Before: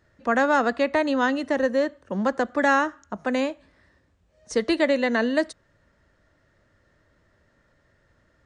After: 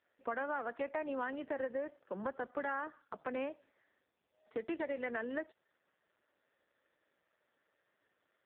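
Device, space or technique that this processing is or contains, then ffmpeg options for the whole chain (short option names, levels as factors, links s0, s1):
voicemail: -af "highpass=340,lowpass=3100,acompressor=threshold=0.0562:ratio=10,volume=0.398" -ar 8000 -c:a libopencore_amrnb -b:a 5150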